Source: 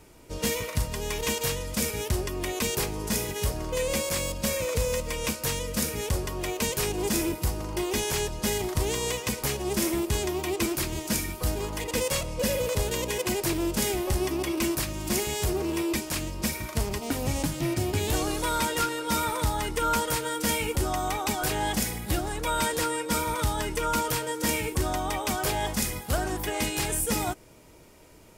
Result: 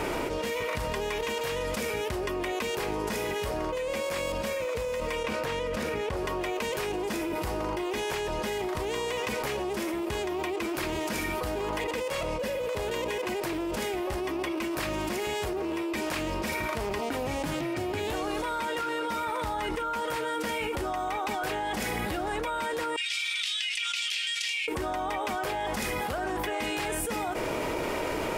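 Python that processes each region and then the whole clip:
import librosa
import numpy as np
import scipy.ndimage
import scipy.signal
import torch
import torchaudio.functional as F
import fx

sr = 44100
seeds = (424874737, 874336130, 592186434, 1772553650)

y = fx.chain(x, sr, fx.high_shelf(hz=5500.0, db=-11.5),
    fx.env_flatten(amount_pct=100), at=(5.24, 6.17))
y = fx.chain(y, sr, fx.steep_highpass(hz=2500.0, slope=36),
    fx.air_absorb(metres=90.0),
    fx.doppler_dist(depth_ms=0.24), at=(22.96, 24.68))
y = fx.bass_treble(y, sr, bass_db=-12, treble_db=-14)
y = fx.env_flatten(y, sr, amount_pct=100)
y = F.gain(torch.from_numpy(y), -7.5).numpy()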